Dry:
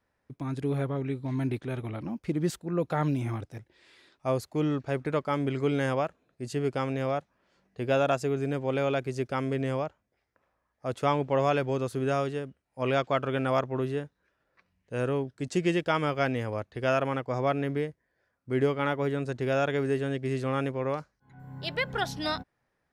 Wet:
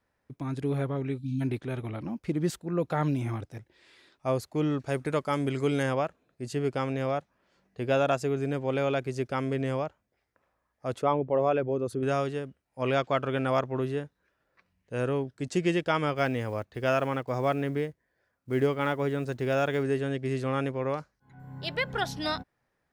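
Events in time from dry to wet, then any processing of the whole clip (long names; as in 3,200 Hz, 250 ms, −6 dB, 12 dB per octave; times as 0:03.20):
0:01.18–0:01.41: time-frequency box erased 290–2,300 Hz
0:04.79–0:05.83: parametric band 9,700 Hz +11 dB 1.4 octaves
0:11.01–0:12.03: spectral envelope exaggerated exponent 1.5
0:16.16–0:19.83: one scale factor per block 7 bits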